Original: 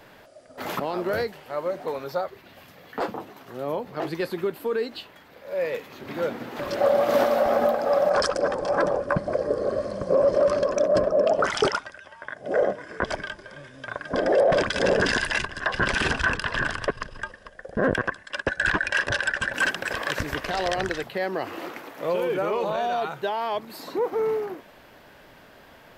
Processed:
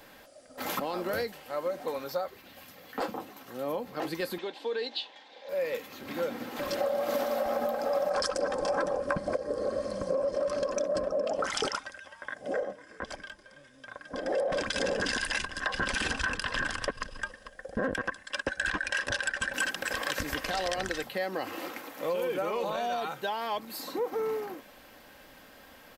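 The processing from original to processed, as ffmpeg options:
ffmpeg -i in.wav -filter_complex "[0:a]asettb=1/sr,asplit=3[link_01][link_02][link_03];[link_01]atrim=end=4.384[link_04];[link_02]atrim=start=4.38:end=5.49,asetpts=PTS-STARTPTS,afade=type=in:duration=0.004:curve=qsin,afade=type=out:start_time=1.106:duration=0.004:curve=qsin,highpass=390,equalizer=frequency=840:width_type=q:width=4:gain=7,equalizer=frequency=1300:width_type=q:width=4:gain=-9,equalizer=frequency=3600:width_type=q:width=4:gain=9,lowpass=frequency=6100:width=0.5412,lowpass=frequency=6100:width=1.3066[link_05];[link_03]atrim=start=5.486[link_06];[link_04][link_05]acrossfade=duration=0.004:curve1=hsin:curve2=qsin[link_07];[link_07][link_06]acrossfade=duration=0.004:curve1=qsin:curve2=hsin,asplit=5[link_08][link_09][link_10][link_11][link_12];[link_08]atrim=end=7.952[link_13];[link_09]atrim=start=7.948:end=9.372,asetpts=PTS-STARTPTS,volume=5.5dB[link_14];[link_10]atrim=start=9.368:end=12.65,asetpts=PTS-STARTPTS,afade=type=out:start_time=3.122:duration=0.16:silence=0.375837[link_15];[link_11]atrim=start=12.65:end=14.24,asetpts=PTS-STARTPTS,volume=-8.5dB[link_16];[link_12]atrim=start=14.24,asetpts=PTS-STARTPTS,afade=type=in:duration=0.16:silence=0.375837[link_17];[link_13][link_14]acrossfade=duration=0.004:curve1=hsin:curve2=hsin[link_18];[link_15][link_16][link_17]concat=n=3:v=0:a=1[link_19];[link_18][link_19]acrossfade=duration=0.004:curve1=hsin:curve2=hsin,highshelf=frequency=4500:gain=9.5,aecho=1:1:3.8:0.4,acompressor=threshold=-22dB:ratio=6,volume=-4.5dB" out.wav

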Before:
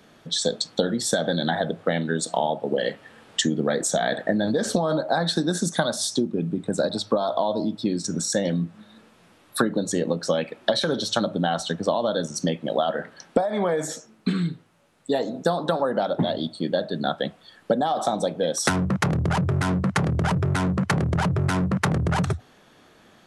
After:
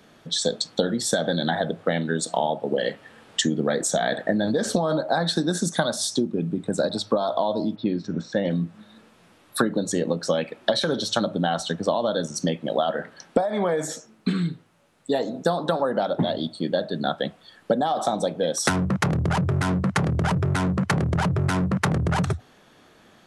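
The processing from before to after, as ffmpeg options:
ffmpeg -i in.wav -filter_complex "[0:a]asplit=3[link_01][link_02][link_03];[link_01]afade=type=out:start_time=7.75:duration=0.02[link_04];[link_02]lowpass=frequency=3400:width=0.5412,lowpass=frequency=3400:width=1.3066,afade=type=in:start_time=7.75:duration=0.02,afade=type=out:start_time=8.49:duration=0.02[link_05];[link_03]afade=type=in:start_time=8.49:duration=0.02[link_06];[link_04][link_05][link_06]amix=inputs=3:normalize=0" out.wav

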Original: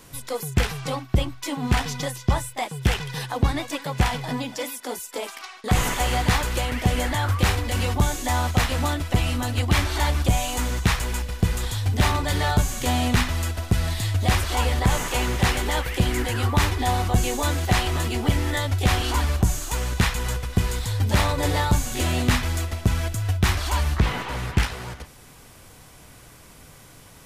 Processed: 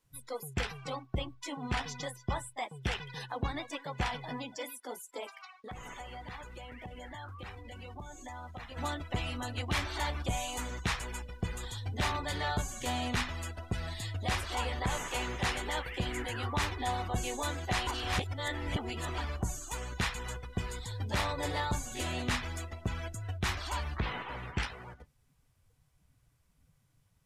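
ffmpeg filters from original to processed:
ffmpeg -i in.wav -filter_complex "[0:a]asplit=3[link_01][link_02][link_03];[link_01]afade=type=out:start_time=5.4:duration=0.02[link_04];[link_02]acompressor=threshold=-32dB:ratio=3:attack=3.2:release=140:knee=1:detection=peak,afade=type=in:start_time=5.4:duration=0.02,afade=type=out:start_time=8.76:duration=0.02[link_05];[link_03]afade=type=in:start_time=8.76:duration=0.02[link_06];[link_04][link_05][link_06]amix=inputs=3:normalize=0,asplit=3[link_07][link_08][link_09];[link_07]atrim=end=17.872[link_10];[link_08]atrim=start=17.868:end=19.182,asetpts=PTS-STARTPTS,areverse[link_11];[link_09]atrim=start=19.178[link_12];[link_10][link_11]acrossfade=duration=0.004:curve1=hsin:curve2=hsin[link_13];[link_13][link_12]acrossfade=duration=0.004:curve1=hsin:curve2=hsin,afftdn=noise_reduction=21:noise_floor=-37,lowshelf=frequency=340:gain=-7,volume=-8dB" out.wav

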